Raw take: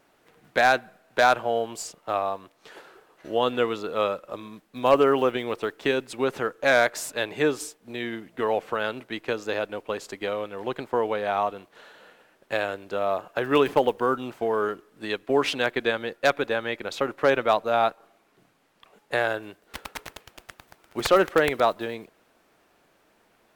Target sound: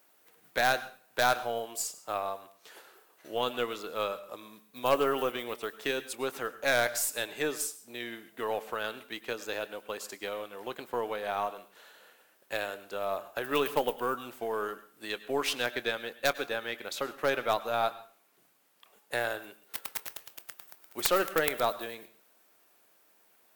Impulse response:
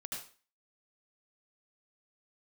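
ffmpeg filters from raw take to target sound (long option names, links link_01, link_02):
-filter_complex "[0:a]aemphasis=mode=production:type=bsi,aeval=exprs='0.944*(cos(1*acos(clip(val(0)/0.944,-1,1)))-cos(1*PI/2))+0.0841*(cos(4*acos(clip(val(0)/0.944,-1,1)))-cos(4*PI/2))':channel_layout=same,asplit=2[link_01][link_02];[1:a]atrim=start_sample=2205,adelay=25[link_03];[link_02][link_03]afir=irnorm=-1:irlink=0,volume=-13dB[link_04];[link_01][link_04]amix=inputs=2:normalize=0,volume=-7dB"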